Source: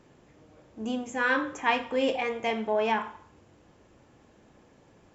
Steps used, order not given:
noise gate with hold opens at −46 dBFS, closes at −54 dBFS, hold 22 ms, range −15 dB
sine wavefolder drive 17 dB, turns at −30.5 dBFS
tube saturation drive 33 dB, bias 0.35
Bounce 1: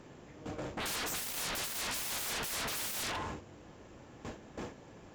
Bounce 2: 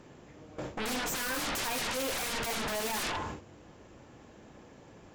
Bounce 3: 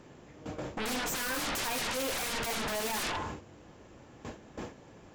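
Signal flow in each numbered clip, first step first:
noise gate with hold, then sine wavefolder, then tube saturation
tube saturation, then noise gate with hold, then sine wavefolder
noise gate with hold, then tube saturation, then sine wavefolder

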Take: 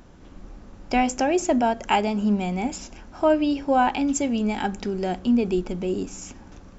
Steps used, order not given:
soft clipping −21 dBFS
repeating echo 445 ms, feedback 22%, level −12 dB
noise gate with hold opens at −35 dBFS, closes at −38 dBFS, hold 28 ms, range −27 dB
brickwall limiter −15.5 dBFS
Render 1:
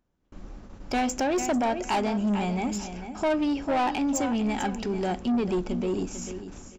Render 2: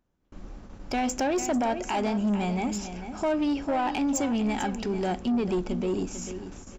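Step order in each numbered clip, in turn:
noise gate with hold, then repeating echo, then soft clipping, then brickwall limiter
brickwall limiter, then repeating echo, then noise gate with hold, then soft clipping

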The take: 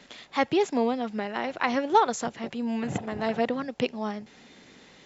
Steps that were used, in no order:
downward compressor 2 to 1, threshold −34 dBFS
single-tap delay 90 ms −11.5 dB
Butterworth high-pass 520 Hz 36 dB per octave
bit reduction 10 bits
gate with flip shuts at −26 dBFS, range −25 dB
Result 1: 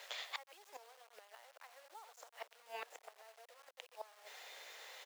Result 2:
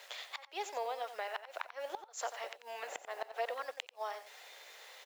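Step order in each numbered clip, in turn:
single-tap delay, then downward compressor, then gate with flip, then bit reduction, then Butterworth high-pass
downward compressor, then bit reduction, then Butterworth high-pass, then gate with flip, then single-tap delay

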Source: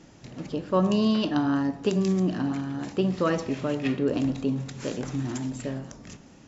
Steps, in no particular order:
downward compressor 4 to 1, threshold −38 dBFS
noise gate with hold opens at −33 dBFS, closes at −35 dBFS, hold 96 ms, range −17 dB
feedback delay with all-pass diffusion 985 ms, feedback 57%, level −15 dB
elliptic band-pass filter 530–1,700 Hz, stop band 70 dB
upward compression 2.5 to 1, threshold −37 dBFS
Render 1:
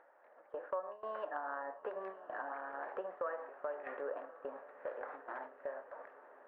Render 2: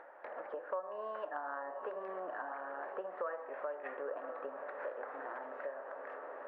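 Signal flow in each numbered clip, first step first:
elliptic band-pass filter, then upward compression, then downward compressor, then noise gate with hold, then feedback delay with all-pass diffusion
feedback delay with all-pass diffusion, then noise gate with hold, then elliptic band-pass filter, then upward compression, then downward compressor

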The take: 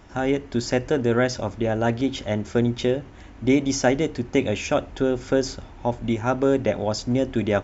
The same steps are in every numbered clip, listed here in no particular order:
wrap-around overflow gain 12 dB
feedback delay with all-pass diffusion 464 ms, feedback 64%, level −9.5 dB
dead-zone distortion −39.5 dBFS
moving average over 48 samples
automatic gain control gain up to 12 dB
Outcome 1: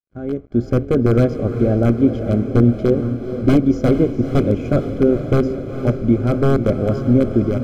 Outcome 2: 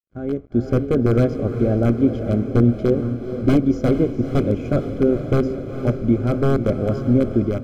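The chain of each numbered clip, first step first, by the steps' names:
dead-zone distortion, then wrap-around overflow, then moving average, then automatic gain control, then feedback delay with all-pass diffusion
dead-zone distortion, then wrap-around overflow, then feedback delay with all-pass diffusion, then automatic gain control, then moving average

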